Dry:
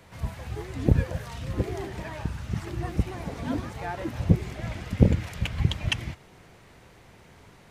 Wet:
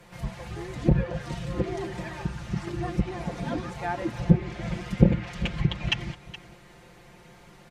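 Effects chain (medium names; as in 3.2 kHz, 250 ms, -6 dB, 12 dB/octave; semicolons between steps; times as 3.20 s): low-pass that closes with the level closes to 2.9 kHz, closed at -18.5 dBFS; comb 5.7 ms, depth 83%; delay 420 ms -16 dB; trim -1 dB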